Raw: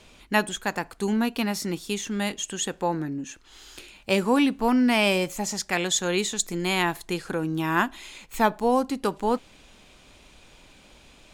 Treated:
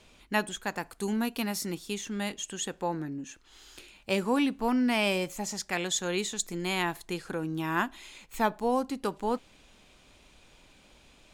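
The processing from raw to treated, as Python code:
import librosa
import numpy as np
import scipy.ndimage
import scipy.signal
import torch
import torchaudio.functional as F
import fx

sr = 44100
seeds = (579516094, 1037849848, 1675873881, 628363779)

y = fx.peak_eq(x, sr, hz=12000.0, db=7.0, octaves=1.3, at=(0.79, 1.75))
y = F.gain(torch.from_numpy(y), -5.5).numpy()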